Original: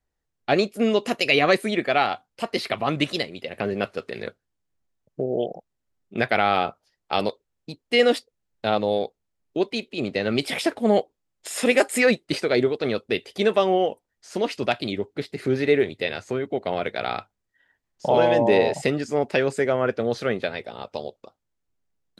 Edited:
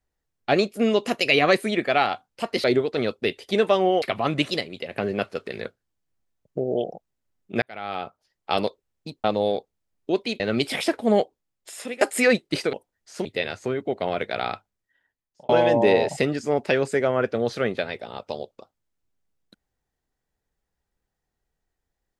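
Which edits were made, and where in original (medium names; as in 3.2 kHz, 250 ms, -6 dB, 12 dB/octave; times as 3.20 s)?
6.24–7.17 s: fade in
7.86–8.71 s: delete
9.87–10.18 s: delete
10.77–11.79 s: fade out equal-power, to -22.5 dB
12.51–13.89 s: move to 2.64 s
14.41–15.90 s: delete
17.17–18.14 s: fade out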